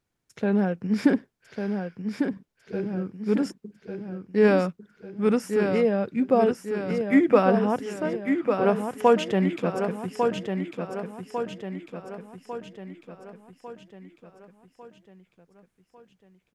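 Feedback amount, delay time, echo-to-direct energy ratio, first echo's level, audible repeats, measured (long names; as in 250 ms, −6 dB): 51%, 1,149 ms, −4.5 dB, −6.0 dB, 5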